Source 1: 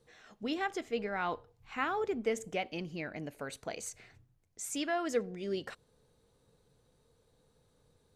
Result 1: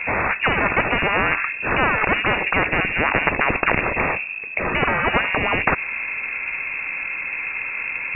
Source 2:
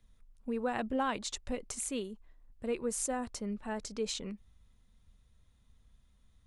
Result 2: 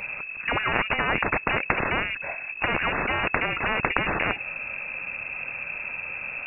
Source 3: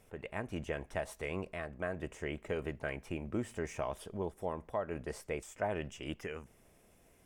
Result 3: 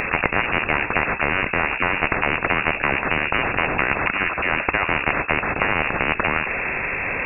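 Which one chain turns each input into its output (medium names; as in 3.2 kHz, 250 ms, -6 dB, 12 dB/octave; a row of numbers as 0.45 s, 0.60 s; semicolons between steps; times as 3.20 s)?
frequency inversion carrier 2.6 kHz; spectrum-flattening compressor 10:1; peak normalisation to -2 dBFS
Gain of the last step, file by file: +17.0 dB, +19.0 dB, +19.0 dB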